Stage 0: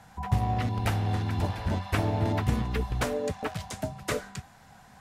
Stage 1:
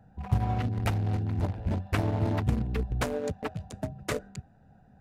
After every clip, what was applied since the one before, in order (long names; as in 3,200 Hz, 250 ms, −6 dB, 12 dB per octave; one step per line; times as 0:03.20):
adaptive Wiener filter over 41 samples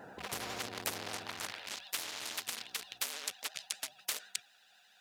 high-pass filter sweep 430 Hz → 3,400 Hz, 0:01.00–0:01.74
pitch vibrato 12 Hz 88 cents
every bin compressed towards the loudest bin 4 to 1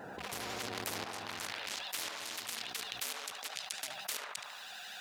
shaped tremolo saw up 0.96 Hz, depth 90%
feedback echo with a band-pass in the loop 73 ms, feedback 67%, band-pass 960 Hz, level −9.5 dB
envelope flattener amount 70%
level −3.5 dB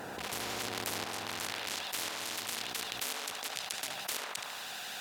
compressor on every frequency bin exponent 0.6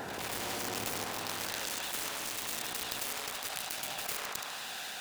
phase distortion by the signal itself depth 0.33 ms
backwards echo 103 ms −5.5 dB
level +1.5 dB